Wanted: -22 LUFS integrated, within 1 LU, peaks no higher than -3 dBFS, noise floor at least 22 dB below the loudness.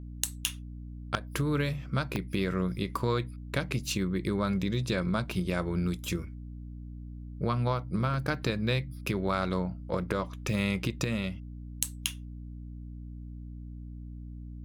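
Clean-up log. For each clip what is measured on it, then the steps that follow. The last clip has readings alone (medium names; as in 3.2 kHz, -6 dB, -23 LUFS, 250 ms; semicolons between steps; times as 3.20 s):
dropouts 2; longest dropout 1.2 ms; hum 60 Hz; highest harmonic 300 Hz; hum level -39 dBFS; loudness -31.5 LUFS; peak level -11.0 dBFS; loudness target -22.0 LUFS
-> interpolate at 2.16/8.14 s, 1.2 ms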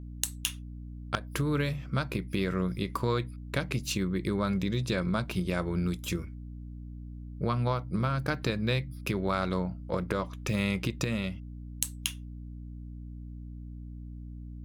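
dropouts 0; hum 60 Hz; highest harmonic 300 Hz; hum level -39 dBFS
-> de-hum 60 Hz, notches 5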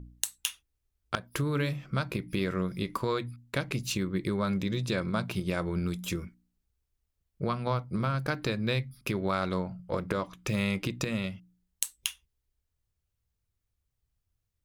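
hum not found; loudness -32.0 LUFS; peak level -11.0 dBFS; loudness target -22.0 LUFS
-> trim +10 dB; peak limiter -3 dBFS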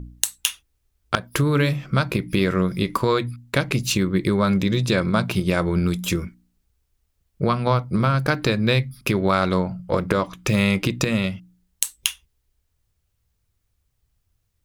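loudness -22.0 LUFS; peak level -3.0 dBFS; noise floor -72 dBFS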